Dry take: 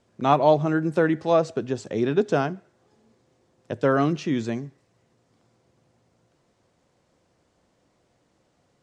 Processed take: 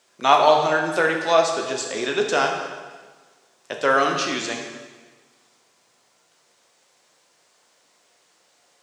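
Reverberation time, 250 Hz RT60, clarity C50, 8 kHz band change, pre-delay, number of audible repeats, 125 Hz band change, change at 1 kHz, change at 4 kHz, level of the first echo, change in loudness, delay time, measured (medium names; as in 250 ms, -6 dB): 1.4 s, 1.4 s, 4.5 dB, +15.0 dB, 7 ms, no echo, -11.0 dB, +6.0 dB, +13.0 dB, no echo, +2.5 dB, no echo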